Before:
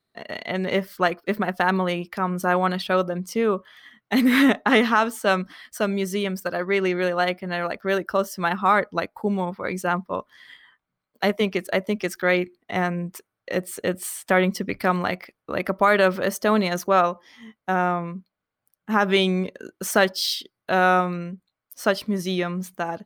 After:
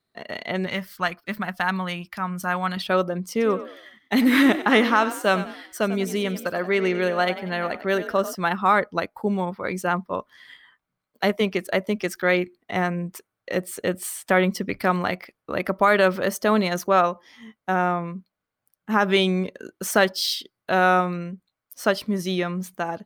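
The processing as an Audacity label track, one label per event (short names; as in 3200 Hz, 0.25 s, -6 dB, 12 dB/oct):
0.660000	2.770000	bell 420 Hz -14.5 dB 1.2 oct
3.310000	8.350000	frequency-shifting echo 94 ms, feedback 38%, per repeat +44 Hz, level -13 dB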